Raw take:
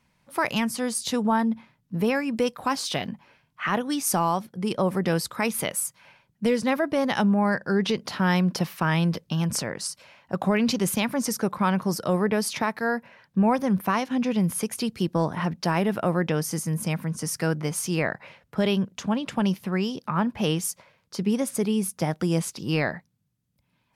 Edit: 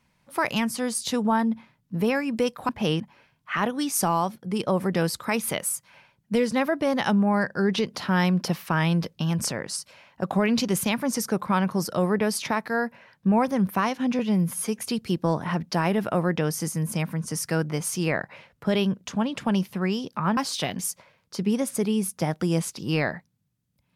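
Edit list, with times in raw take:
0:02.69–0:03.11: swap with 0:20.28–0:20.59
0:14.30–0:14.70: time-stretch 1.5×

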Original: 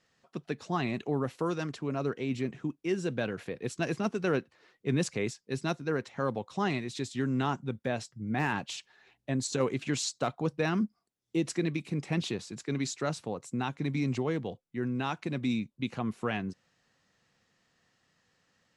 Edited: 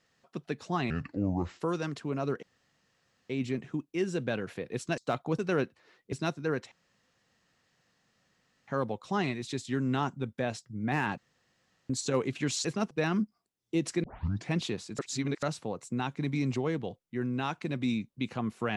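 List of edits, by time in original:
0:00.90–0:01.38: play speed 68%
0:02.20: splice in room tone 0.87 s
0:03.88–0:04.14: swap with 0:10.11–0:10.52
0:04.88–0:05.55: remove
0:06.14: splice in room tone 1.96 s
0:08.64–0:09.36: fill with room tone
0:11.65: tape start 0.45 s
0:12.60–0:13.04: reverse

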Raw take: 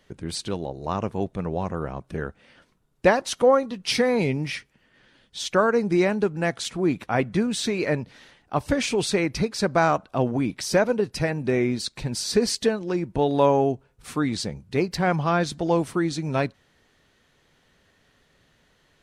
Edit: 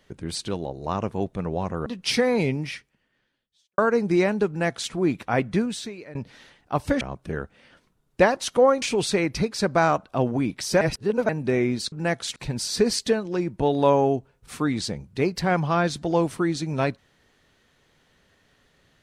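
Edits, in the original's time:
0:01.86–0:03.67: move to 0:08.82
0:04.32–0:05.59: fade out quadratic
0:06.29–0:06.73: duplicate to 0:11.92
0:07.41–0:07.96: fade out quadratic, to −19 dB
0:10.81–0:11.29: reverse

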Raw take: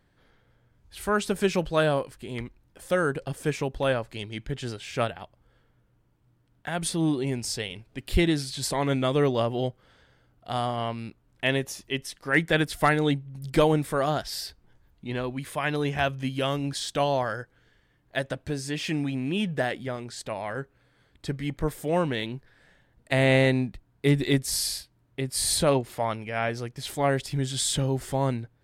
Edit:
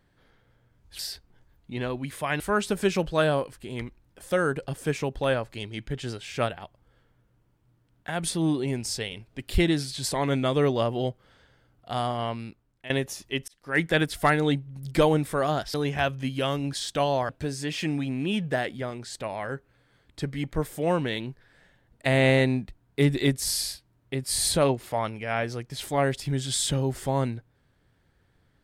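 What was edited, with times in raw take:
0:10.95–0:11.49: fade out, to −18 dB
0:12.07–0:12.44: fade in
0:14.33–0:15.74: move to 0:00.99
0:17.29–0:18.35: remove

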